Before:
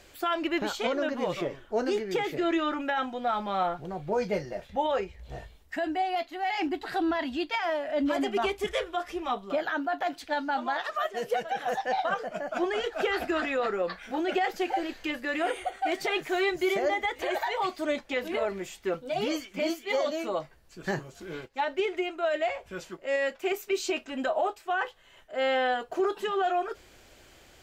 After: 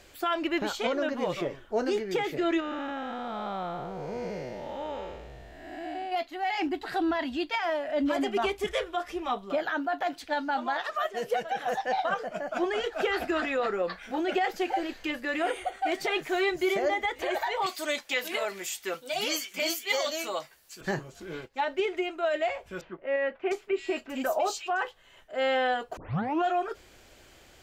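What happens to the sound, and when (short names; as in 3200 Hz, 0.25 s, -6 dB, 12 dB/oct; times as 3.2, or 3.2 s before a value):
2.6–6.12 time blur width 0.367 s
17.66–20.81 tilt +4 dB/oct
22.81–24.82 bands offset in time lows, highs 0.7 s, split 2800 Hz
25.97 tape start 0.48 s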